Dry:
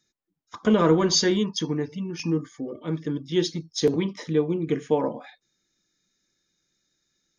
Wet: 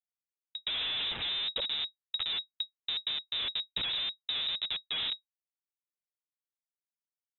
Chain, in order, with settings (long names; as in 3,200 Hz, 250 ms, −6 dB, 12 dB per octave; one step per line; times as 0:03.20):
multi-voice chorus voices 2, 0.78 Hz, delay 11 ms, depth 1.9 ms
comparator with hysteresis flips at −29.5 dBFS
voice inversion scrambler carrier 3,800 Hz
level −3.5 dB